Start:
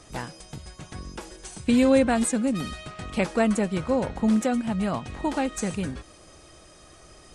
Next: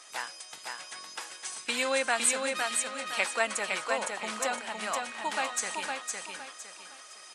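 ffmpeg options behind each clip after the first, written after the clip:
-af "highpass=1.1k,aecho=1:1:510|1020|1530|2040:0.631|0.196|0.0606|0.0188,volume=3dB"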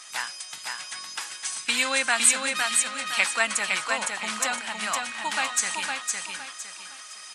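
-af "equalizer=f=470:w=0.86:g=-12,volume=7.5dB"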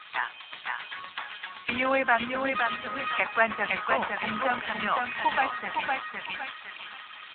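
-filter_complex "[0:a]acrossover=split=180|1300[a][b][c];[c]acompressor=threshold=-34dB:ratio=5[d];[a][b][d]amix=inputs=3:normalize=0,volume=6.5dB" -ar 8000 -c:a libopencore_amrnb -b:a 7400

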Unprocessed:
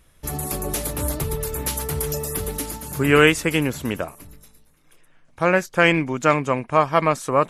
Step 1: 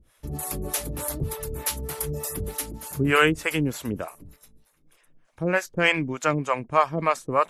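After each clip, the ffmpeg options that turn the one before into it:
-filter_complex "[0:a]acrossover=split=480[a][b];[a]aeval=exprs='val(0)*(1-1/2+1/2*cos(2*PI*3.3*n/s))':c=same[c];[b]aeval=exprs='val(0)*(1-1/2-1/2*cos(2*PI*3.3*n/s))':c=same[d];[c][d]amix=inputs=2:normalize=0"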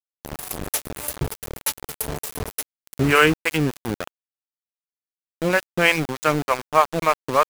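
-af "aeval=exprs='val(0)*gte(abs(val(0)),0.0501)':c=same,volume=3.5dB"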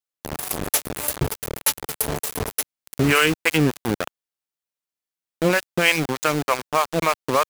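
-filter_complex "[0:a]lowshelf=f=74:g=-6.5,acrossover=split=2700[a][b];[a]alimiter=limit=-13dB:level=0:latency=1:release=223[c];[c][b]amix=inputs=2:normalize=0,volume=4dB"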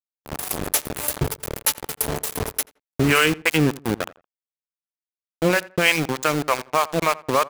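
-filter_complex "[0:a]agate=range=-57dB:threshold=-32dB:ratio=16:detection=peak,asplit=2[a][b];[b]adelay=84,lowpass=f=1.9k:p=1,volume=-19dB,asplit=2[c][d];[d]adelay=84,lowpass=f=1.9k:p=1,volume=0.27[e];[a][c][e]amix=inputs=3:normalize=0"

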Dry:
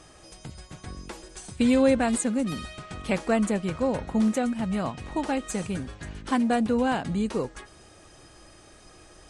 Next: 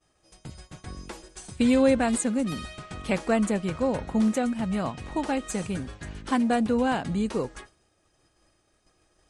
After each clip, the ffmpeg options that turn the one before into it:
-af "agate=range=-33dB:threshold=-40dB:ratio=3:detection=peak"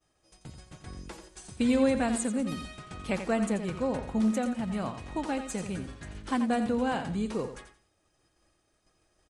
-af "aecho=1:1:87|174|261:0.335|0.077|0.0177,volume=-4.5dB"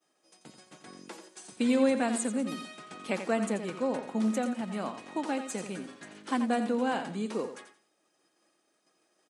-af "highpass=f=210:w=0.5412,highpass=f=210:w=1.3066"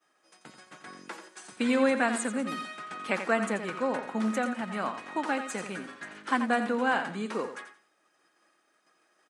-af "equalizer=f=1.5k:t=o:w=1.6:g=11,volume=-1.5dB"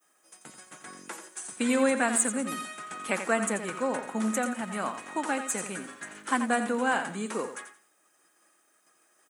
-af "aexciter=amount=2.1:drive=9.7:freq=6.6k"

